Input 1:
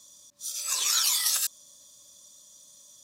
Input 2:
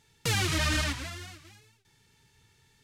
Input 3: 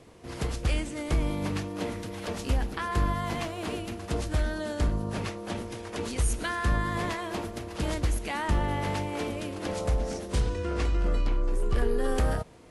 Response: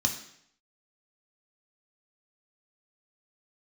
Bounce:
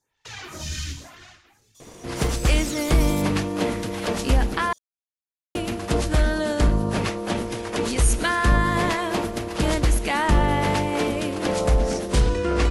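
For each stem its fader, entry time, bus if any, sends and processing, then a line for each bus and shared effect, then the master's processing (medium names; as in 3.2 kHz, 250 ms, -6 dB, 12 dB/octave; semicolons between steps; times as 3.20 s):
-9.0 dB, 1.75 s, bus A, no send, gain riding 2 s
-8.0 dB, 0.00 s, bus A, send -9.5 dB, peaking EQ 190 Hz -12 dB 0.78 oct; lamp-driven phase shifter 0.98 Hz
+2.0 dB, 1.80 s, muted 4.73–5.55 s, no bus, no send, peaking EQ 82 Hz -8.5 dB 0.47 oct
bus A: 0.0 dB, whisper effect; compression 2.5:1, threshold -45 dBFS, peak gain reduction 10.5 dB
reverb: on, RT60 0.70 s, pre-delay 3 ms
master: level rider gain up to 7 dB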